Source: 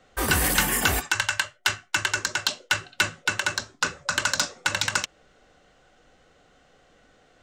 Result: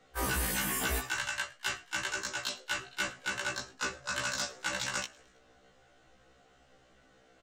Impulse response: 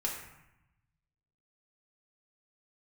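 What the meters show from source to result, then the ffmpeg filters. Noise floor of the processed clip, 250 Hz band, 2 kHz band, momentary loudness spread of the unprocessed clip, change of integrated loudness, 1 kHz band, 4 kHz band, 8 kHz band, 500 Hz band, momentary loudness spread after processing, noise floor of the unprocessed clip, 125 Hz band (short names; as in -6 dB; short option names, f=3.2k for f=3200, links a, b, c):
-64 dBFS, -8.0 dB, -9.5 dB, 7 LU, -9.0 dB, -9.0 dB, -9.5 dB, -9.0 dB, -7.0 dB, 6 LU, -60 dBFS, -9.0 dB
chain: -filter_complex "[0:a]alimiter=limit=-18.5dB:level=0:latency=1:release=24,asplit=4[a][b][c][d];[b]adelay=108,afreqshift=66,volume=-24dB[e];[c]adelay=216,afreqshift=132,volume=-29.5dB[f];[d]adelay=324,afreqshift=198,volume=-35dB[g];[a][e][f][g]amix=inputs=4:normalize=0,afftfilt=real='re*1.73*eq(mod(b,3),0)':imag='im*1.73*eq(mod(b,3),0)':win_size=2048:overlap=0.75,volume=-2dB"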